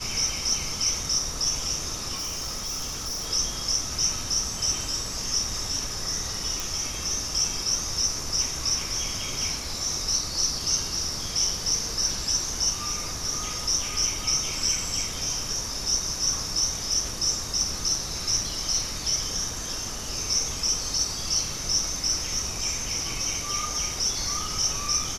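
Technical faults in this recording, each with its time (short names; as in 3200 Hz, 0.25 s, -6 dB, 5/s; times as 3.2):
2.15–3.28 clipped -28 dBFS
6.6 pop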